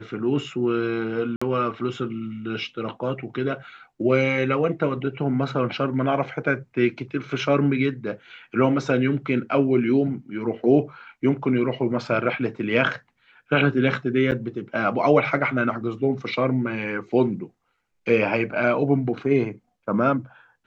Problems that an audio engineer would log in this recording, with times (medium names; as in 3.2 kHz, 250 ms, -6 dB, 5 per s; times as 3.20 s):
1.36–1.42 s: dropout 55 ms
14.31–14.32 s: dropout 8.3 ms